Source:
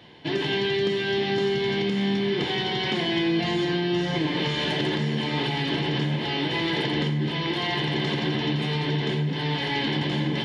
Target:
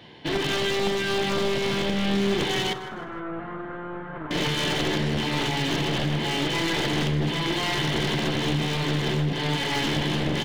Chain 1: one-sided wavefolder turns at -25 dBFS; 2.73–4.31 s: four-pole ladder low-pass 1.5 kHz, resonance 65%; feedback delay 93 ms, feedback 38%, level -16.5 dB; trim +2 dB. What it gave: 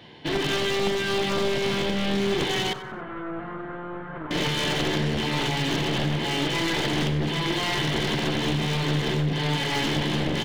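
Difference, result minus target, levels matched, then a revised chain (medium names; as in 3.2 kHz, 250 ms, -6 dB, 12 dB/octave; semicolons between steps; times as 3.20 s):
echo 63 ms early
one-sided wavefolder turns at -25 dBFS; 2.73–4.31 s: four-pole ladder low-pass 1.5 kHz, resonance 65%; feedback delay 156 ms, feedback 38%, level -16.5 dB; trim +2 dB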